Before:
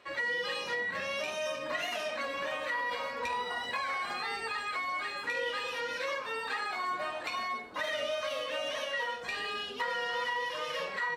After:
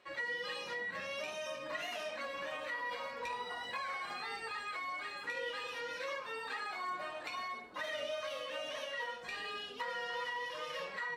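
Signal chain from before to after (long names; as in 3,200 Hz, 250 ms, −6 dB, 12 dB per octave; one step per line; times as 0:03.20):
flanger 1.3 Hz, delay 5.3 ms, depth 1.7 ms, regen −62%
level −2 dB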